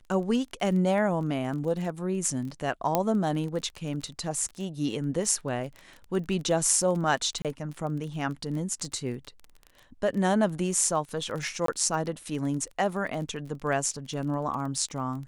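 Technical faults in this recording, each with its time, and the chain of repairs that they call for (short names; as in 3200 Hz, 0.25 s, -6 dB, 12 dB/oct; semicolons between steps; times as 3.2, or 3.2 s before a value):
crackle 22/s -34 dBFS
2.95 pop -9 dBFS
7.42–7.45 gap 27 ms
11.66–11.68 gap 23 ms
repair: de-click; interpolate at 7.42, 27 ms; interpolate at 11.66, 23 ms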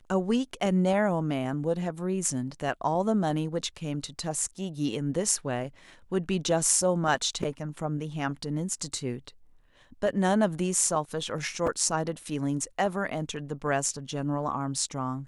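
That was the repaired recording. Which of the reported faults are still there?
none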